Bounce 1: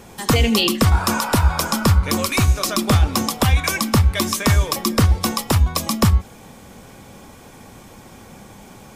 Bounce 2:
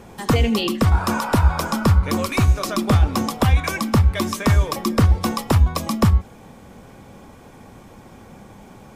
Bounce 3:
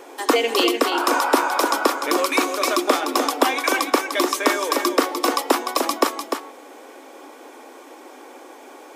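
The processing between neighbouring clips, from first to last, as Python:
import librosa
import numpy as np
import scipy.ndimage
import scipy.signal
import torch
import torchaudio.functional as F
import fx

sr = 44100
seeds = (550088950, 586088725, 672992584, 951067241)

y1 = fx.rider(x, sr, range_db=10, speed_s=0.5)
y1 = fx.high_shelf(y1, sr, hz=2600.0, db=-9.0)
y2 = fx.brickwall_highpass(y1, sr, low_hz=260.0)
y2 = y2 + 10.0 ** (-6.5 / 20.0) * np.pad(y2, (int(299 * sr / 1000.0), 0))[:len(y2)]
y2 = F.gain(torch.from_numpy(y2), 4.0).numpy()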